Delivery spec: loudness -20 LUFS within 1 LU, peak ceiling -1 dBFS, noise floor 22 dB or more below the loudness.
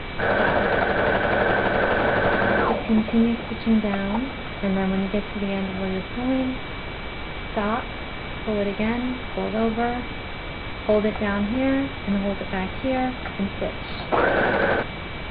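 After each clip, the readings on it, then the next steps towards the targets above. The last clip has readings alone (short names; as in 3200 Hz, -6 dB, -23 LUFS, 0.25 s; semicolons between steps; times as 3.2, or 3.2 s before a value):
steady tone 2300 Hz; tone level -40 dBFS; noise floor -33 dBFS; noise floor target -46 dBFS; loudness -24.0 LUFS; peak -7.5 dBFS; loudness target -20.0 LUFS
-> notch 2300 Hz, Q 30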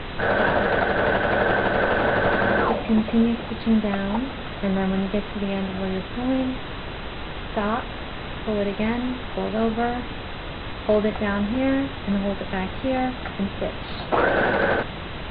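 steady tone none; noise floor -33 dBFS; noise floor target -46 dBFS
-> noise print and reduce 13 dB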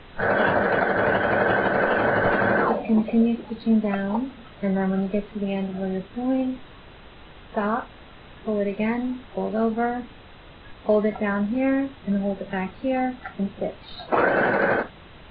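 noise floor -46 dBFS; loudness -24.0 LUFS; peak -8.5 dBFS; loudness target -20.0 LUFS
-> gain +4 dB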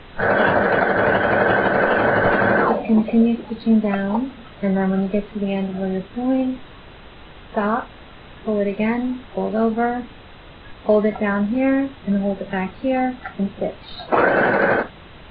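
loudness -20.0 LUFS; peak -4.5 dBFS; noise floor -42 dBFS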